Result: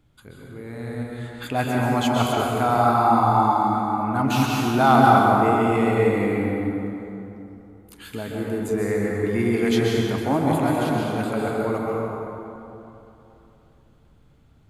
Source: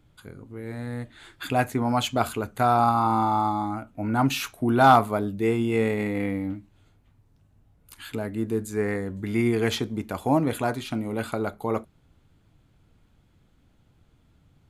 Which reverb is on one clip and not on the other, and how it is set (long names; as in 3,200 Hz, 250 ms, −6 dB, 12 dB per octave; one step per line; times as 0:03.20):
dense smooth reverb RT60 3.1 s, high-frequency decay 0.5×, pre-delay 115 ms, DRR −3.5 dB
level −1.5 dB